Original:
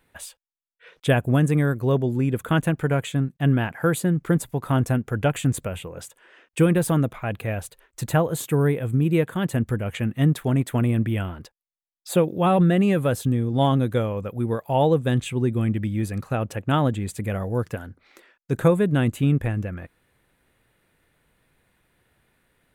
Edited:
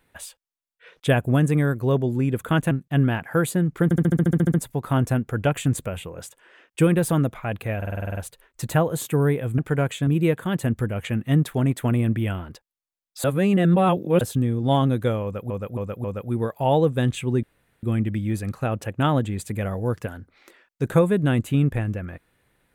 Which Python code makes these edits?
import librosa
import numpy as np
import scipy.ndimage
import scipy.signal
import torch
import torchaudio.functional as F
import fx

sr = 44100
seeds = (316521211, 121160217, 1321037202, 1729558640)

y = fx.edit(x, sr, fx.move(start_s=2.71, length_s=0.49, to_s=8.97),
    fx.stutter(start_s=4.33, slice_s=0.07, count=11),
    fx.stutter(start_s=7.56, slice_s=0.05, count=9),
    fx.reverse_span(start_s=12.14, length_s=0.97),
    fx.repeat(start_s=14.13, length_s=0.27, count=4),
    fx.insert_room_tone(at_s=15.52, length_s=0.4), tone=tone)